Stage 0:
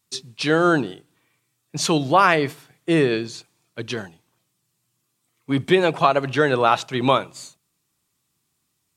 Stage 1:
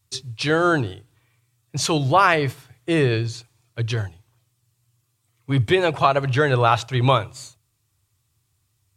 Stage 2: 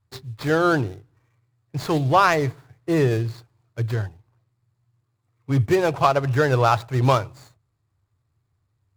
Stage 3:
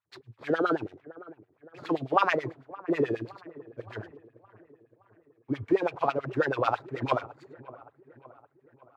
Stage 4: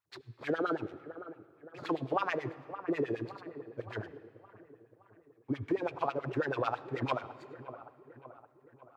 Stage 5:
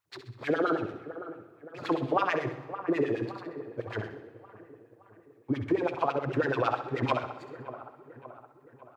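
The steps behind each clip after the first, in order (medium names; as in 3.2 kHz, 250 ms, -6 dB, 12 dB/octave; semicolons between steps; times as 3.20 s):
resonant low shelf 140 Hz +10.5 dB, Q 3
median filter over 15 samples
LFO band-pass sine 9.2 Hz 250–2900 Hz; feedback echo behind a low-pass 568 ms, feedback 52%, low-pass 1.5 kHz, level -19 dB
compression 3:1, threshold -30 dBFS, peak gain reduction 10.5 dB; on a send at -17.5 dB: reverberation RT60 2.6 s, pre-delay 61 ms
feedback delay 65 ms, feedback 50%, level -10 dB; trim +4.5 dB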